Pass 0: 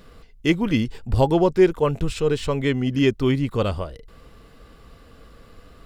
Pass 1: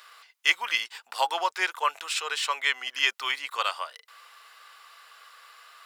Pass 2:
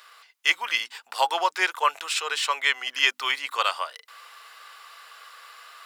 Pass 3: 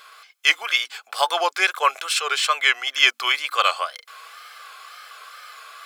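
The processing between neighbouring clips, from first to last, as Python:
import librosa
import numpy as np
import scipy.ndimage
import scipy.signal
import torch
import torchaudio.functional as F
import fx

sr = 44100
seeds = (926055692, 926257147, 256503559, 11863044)

y1 = scipy.signal.sosfilt(scipy.signal.butter(4, 980.0, 'highpass', fs=sr, output='sos'), x)
y1 = F.gain(torch.from_numpy(y1), 5.5).numpy()
y2 = fx.low_shelf(y1, sr, hz=370.0, db=3.0)
y2 = fx.hum_notches(y2, sr, base_hz=50, count=6)
y2 = fx.rider(y2, sr, range_db=10, speed_s=2.0)
y2 = F.gain(torch.from_numpy(y2), 2.5).numpy()
y3 = scipy.signal.sosfilt(scipy.signal.butter(2, 410.0, 'highpass', fs=sr, output='sos'), y2)
y3 = fx.wow_flutter(y3, sr, seeds[0], rate_hz=2.1, depth_cents=110.0)
y3 = fx.notch_comb(y3, sr, f0_hz=940.0)
y3 = F.gain(torch.from_numpy(y3), 6.0).numpy()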